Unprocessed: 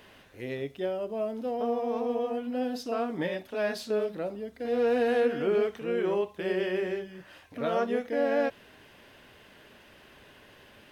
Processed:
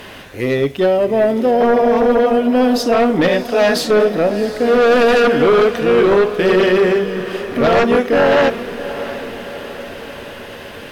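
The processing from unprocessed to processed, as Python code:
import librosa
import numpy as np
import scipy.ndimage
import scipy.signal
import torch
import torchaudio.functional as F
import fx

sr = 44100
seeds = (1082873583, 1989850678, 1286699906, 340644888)

y = fx.fold_sine(x, sr, drive_db=9, ceiling_db=-15.0)
y = fx.echo_diffused(y, sr, ms=711, feedback_pct=56, wet_db=-13.0)
y = y * 10.0 ** (6.5 / 20.0)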